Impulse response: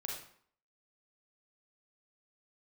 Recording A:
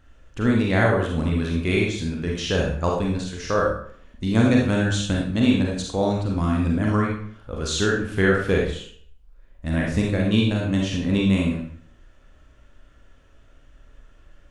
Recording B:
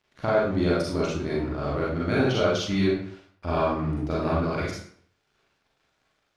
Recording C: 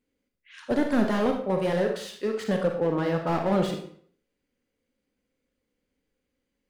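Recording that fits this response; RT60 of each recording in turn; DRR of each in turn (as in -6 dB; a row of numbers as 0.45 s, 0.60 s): A; 0.60 s, 0.60 s, 0.60 s; -2.0 dB, -7.0 dB, 3.0 dB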